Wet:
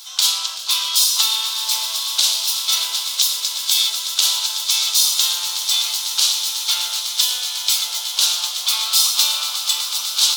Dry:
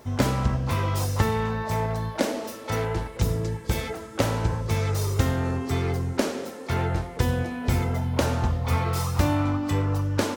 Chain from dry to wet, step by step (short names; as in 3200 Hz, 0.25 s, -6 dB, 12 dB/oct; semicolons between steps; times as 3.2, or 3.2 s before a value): dynamic EQ 1600 Hz, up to -5 dB, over -44 dBFS, Q 1.3; HPF 1200 Hz 24 dB/oct; resonant high shelf 2700 Hz +11 dB, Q 3; notch 1800 Hz, Q 15; swelling echo 0.124 s, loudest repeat 8, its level -16 dB; maximiser +9 dB; gain -1 dB